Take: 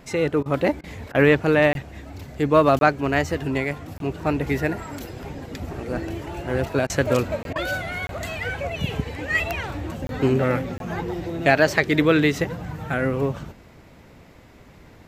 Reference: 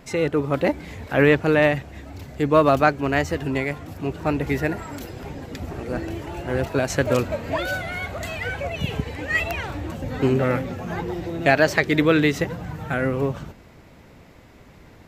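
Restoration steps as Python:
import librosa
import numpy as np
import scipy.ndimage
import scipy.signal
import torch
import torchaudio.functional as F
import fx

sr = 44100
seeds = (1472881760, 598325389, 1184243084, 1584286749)

y = fx.fix_interpolate(x, sr, at_s=(1.73, 2.79, 3.98, 7.43, 8.07, 10.07, 10.78), length_ms=22.0)
y = fx.fix_interpolate(y, sr, at_s=(0.43, 0.81, 1.12, 6.87, 7.53), length_ms=26.0)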